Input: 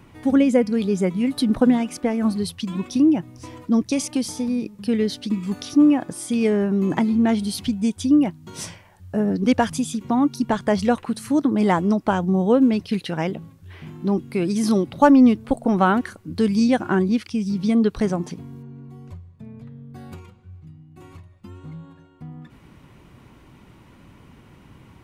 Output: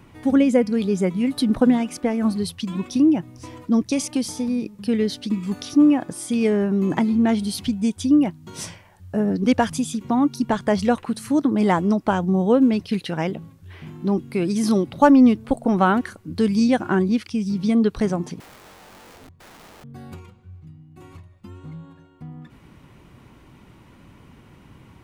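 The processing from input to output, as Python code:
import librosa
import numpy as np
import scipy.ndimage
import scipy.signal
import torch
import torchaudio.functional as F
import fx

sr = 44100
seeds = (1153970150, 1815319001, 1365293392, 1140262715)

y = fx.overflow_wrap(x, sr, gain_db=41.5, at=(18.4, 19.84))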